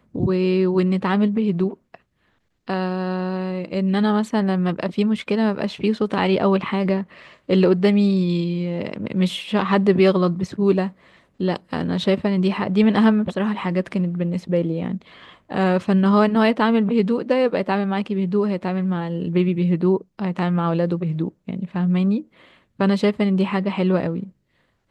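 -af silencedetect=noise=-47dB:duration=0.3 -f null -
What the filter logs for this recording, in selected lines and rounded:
silence_start: 2.00
silence_end: 2.67 | silence_duration: 0.67
silence_start: 24.30
silence_end: 24.91 | silence_duration: 0.61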